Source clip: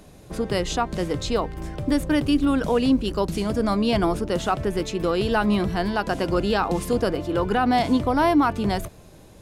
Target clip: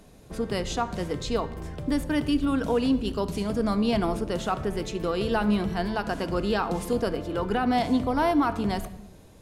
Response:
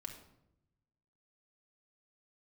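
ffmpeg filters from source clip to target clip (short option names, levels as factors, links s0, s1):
-filter_complex "[0:a]asplit=2[s0][s1];[1:a]atrim=start_sample=2205,afade=t=out:st=0.38:d=0.01,atrim=end_sample=17199,asetrate=33957,aresample=44100[s2];[s1][s2]afir=irnorm=-1:irlink=0,volume=0.794[s3];[s0][s3]amix=inputs=2:normalize=0,volume=0.398"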